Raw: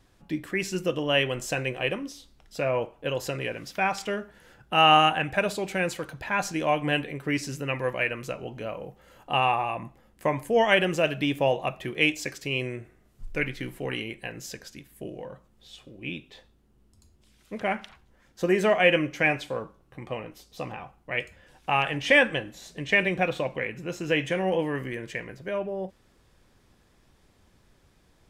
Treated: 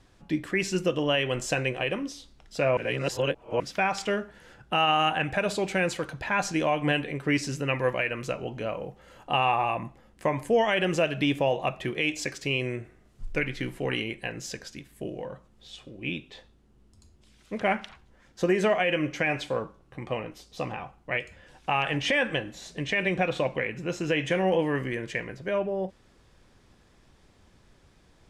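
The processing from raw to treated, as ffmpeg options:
-filter_complex "[0:a]asplit=3[a][b][c];[a]atrim=end=2.772[d];[b]atrim=start=2.768:end=3.602,asetpts=PTS-STARTPTS,areverse[e];[c]atrim=start=3.598[f];[d][e]acrossfade=d=0.004:c1=hsin:c2=hsin[g];[g][f]acrossfade=d=0.004:c1=hsin:c2=hsin,lowpass=9.1k,alimiter=limit=-17dB:level=0:latency=1:release=139,volume=2.5dB"

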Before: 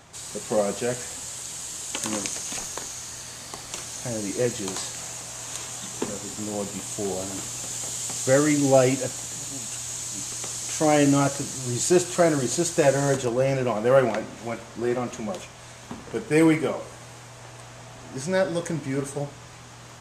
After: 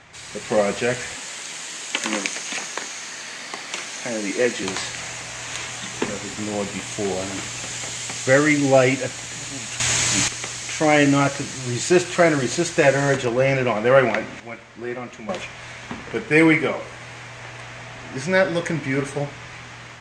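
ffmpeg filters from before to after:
-filter_complex "[0:a]asettb=1/sr,asplit=3[a][b][c];[a]atrim=end=1.154[d];[b]atrim=start=1.15:end=4.63,asetpts=PTS-STARTPTS,afade=t=in:d=0.004:c=qsin,afade=t=out:st=3.476:d=0.004:c=qsin,highpass=f=180:w=0.5412,highpass=f=180:w=1.3066[e];[c]atrim=start=4.626[f];[d][e]acrossfade=d=0.004:c1=hsin:c2=qsin[g];[g][f]acrossfade=d=0.004:c1=qsin:c2=hsin,asplit=5[h][i][j][k][l];[h]atrim=end=9.802[m];[i]atrim=start=9.798:end=10.282,asetpts=PTS-STARTPTS,volume=11dB[n];[j]atrim=start=10.278:end=14.402[o];[k]atrim=start=14.398:end=15.292,asetpts=PTS-STARTPTS,volume=-9dB[p];[l]atrim=start=15.288[q];[m][n]acrossfade=d=0.004:c1=hsin:c2=hsin[r];[r][o]acrossfade=d=0.004:c1=hsin:c2=hsin[s];[s][p]acrossfade=d=0.004:c1=hsin:c2=hsin[t];[t][q]acrossfade=d=0.004:c1=hsin:c2=hsin,lowpass=6.2k,equalizer=f=2.1k:t=o:w=1:g=10,dynaudnorm=f=160:g=5:m=4dB"

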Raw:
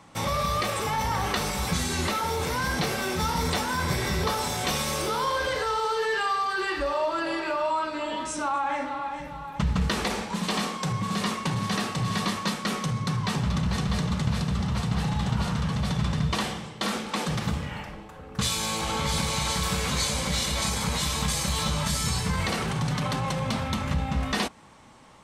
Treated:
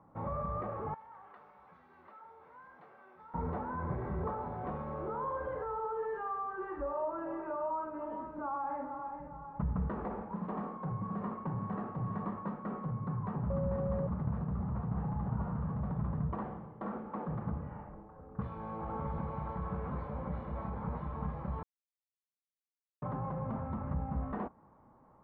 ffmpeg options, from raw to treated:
-filter_complex "[0:a]asettb=1/sr,asplit=3[a][b][c];[a]atrim=end=0.944[d];[b]atrim=start=0.94:end=3.34,asetpts=PTS-STARTPTS,afade=t=in:d=0.004:c=qsin,afade=t=out:st=2.396:d=0.004:c=qsin,bandpass=f=6.5k:t=q:w=0.73[e];[c]atrim=start=3.336[f];[d][e]acrossfade=d=0.004:c1=hsin:c2=qsin[g];[g][f]acrossfade=d=0.004:c1=qsin:c2=hsin,asettb=1/sr,asplit=3[h][i][j];[h]atrim=end=13.504[k];[i]atrim=start=13.5:end=14.07,asetpts=PTS-STARTPTS,afade=t=in:d=0.004:c=qsin,afade=t=out:st=0.566:d=0.004:c=qsin,aeval=exprs='val(0)+0.0501*sin(2*PI*550*n/s)':c=same[l];[j]atrim=start=14.066[m];[k][l]acrossfade=d=0.004:c1=hsin:c2=qsin[n];[n][m]acrossfade=d=0.004:c1=qsin:c2=hsin,asplit=3[o][p][q];[o]atrim=end=21.63,asetpts=PTS-STARTPTS,afade=t=out:st=21.626:d=0.004:c=hsin[r];[p]atrim=start=21.63:end=23.02,asetpts=PTS-STARTPTS,volume=0[s];[q]atrim=start=23.02,asetpts=PTS-STARTPTS,afade=t=in:d=0.004:c=hsin[t];[r][s][t]concat=n=3:v=0:a=1,lowpass=f=1.2k:w=0.5412,lowpass=f=1.2k:w=1.3066,volume=-8.5dB"

